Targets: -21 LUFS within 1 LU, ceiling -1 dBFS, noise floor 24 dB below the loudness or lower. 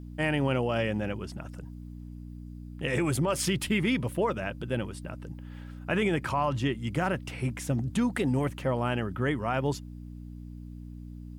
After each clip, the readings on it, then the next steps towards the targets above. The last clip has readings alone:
hum 60 Hz; harmonics up to 300 Hz; hum level -40 dBFS; loudness -29.5 LUFS; peak -15.0 dBFS; loudness target -21.0 LUFS
-> de-hum 60 Hz, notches 5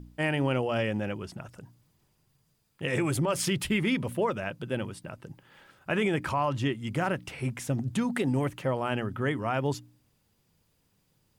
hum none; loudness -30.0 LUFS; peak -15.0 dBFS; loudness target -21.0 LUFS
-> gain +9 dB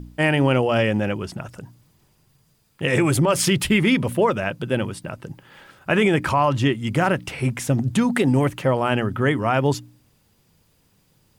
loudness -21.0 LUFS; peak -6.0 dBFS; noise floor -63 dBFS

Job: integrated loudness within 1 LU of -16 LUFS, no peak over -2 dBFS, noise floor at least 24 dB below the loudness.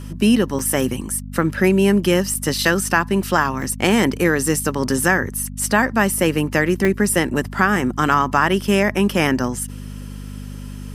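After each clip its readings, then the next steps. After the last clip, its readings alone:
dropouts 5; longest dropout 3.1 ms; hum 50 Hz; harmonics up to 250 Hz; hum level -30 dBFS; loudness -18.5 LUFS; peak -1.0 dBFS; loudness target -16.0 LUFS
-> interpolate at 0.59/2.34/3.62/4.13/6.85, 3.1 ms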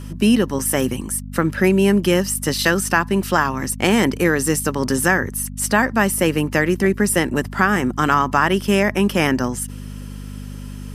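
dropouts 0; hum 50 Hz; harmonics up to 250 Hz; hum level -30 dBFS
-> de-hum 50 Hz, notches 5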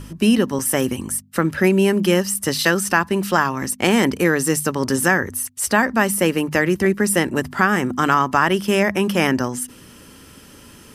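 hum none; loudness -18.5 LUFS; peak -1.5 dBFS; loudness target -16.0 LUFS
-> gain +2.5 dB; limiter -2 dBFS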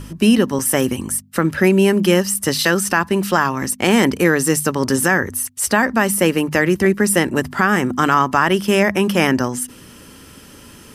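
loudness -16.5 LUFS; peak -2.0 dBFS; noise floor -42 dBFS

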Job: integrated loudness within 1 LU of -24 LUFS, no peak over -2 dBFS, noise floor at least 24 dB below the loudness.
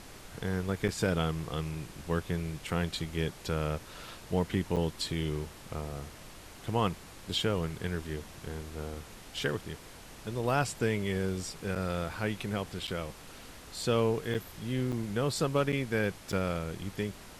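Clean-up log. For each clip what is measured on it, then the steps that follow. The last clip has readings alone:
dropouts 8; longest dropout 7.2 ms; noise floor -50 dBFS; noise floor target -58 dBFS; loudness -33.5 LUFS; peak -16.0 dBFS; loudness target -24.0 LUFS
-> interpolate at 0.88/4.76/11.75/12.87/14.34/14.92/15.72/16.32, 7.2 ms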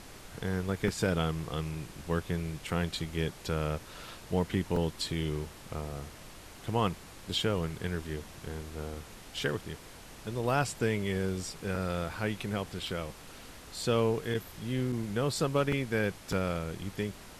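dropouts 0; noise floor -50 dBFS; noise floor target -58 dBFS
-> noise print and reduce 8 dB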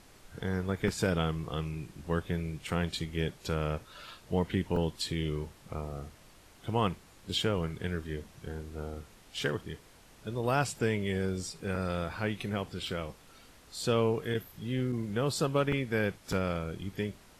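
noise floor -57 dBFS; noise floor target -58 dBFS
-> noise print and reduce 6 dB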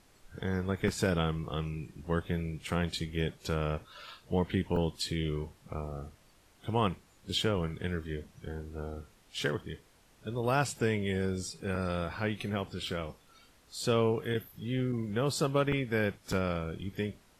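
noise floor -63 dBFS; loudness -33.5 LUFS; peak -16.0 dBFS; loudness target -24.0 LUFS
-> gain +9.5 dB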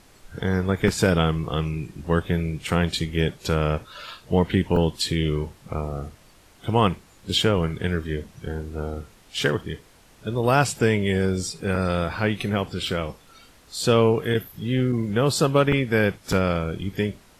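loudness -24.0 LUFS; peak -6.5 dBFS; noise floor -53 dBFS

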